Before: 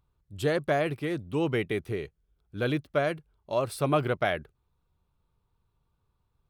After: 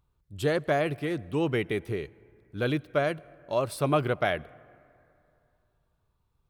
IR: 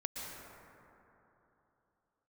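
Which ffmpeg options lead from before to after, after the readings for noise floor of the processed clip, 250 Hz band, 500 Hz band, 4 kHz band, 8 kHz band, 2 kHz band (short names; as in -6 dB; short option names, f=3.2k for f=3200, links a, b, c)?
-74 dBFS, +0.5 dB, +0.5 dB, +0.5 dB, +0.5 dB, +0.5 dB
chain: -filter_complex "[0:a]asplit=2[a][b];[1:a]atrim=start_sample=2205,asetrate=52920,aresample=44100[c];[b][c]afir=irnorm=-1:irlink=0,volume=-21.5dB[d];[a][d]amix=inputs=2:normalize=0"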